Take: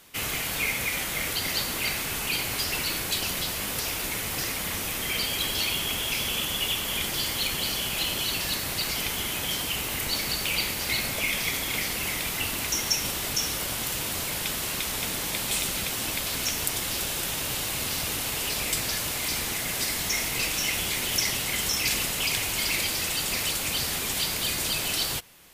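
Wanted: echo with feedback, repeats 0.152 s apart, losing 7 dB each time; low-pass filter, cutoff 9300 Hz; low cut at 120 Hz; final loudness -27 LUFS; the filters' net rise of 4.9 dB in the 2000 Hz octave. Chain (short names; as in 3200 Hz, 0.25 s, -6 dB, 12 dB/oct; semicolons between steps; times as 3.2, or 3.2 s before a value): HPF 120 Hz; LPF 9300 Hz; bell 2000 Hz +6 dB; feedback echo 0.152 s, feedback 45%, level -7 dB; gain -2.5 dB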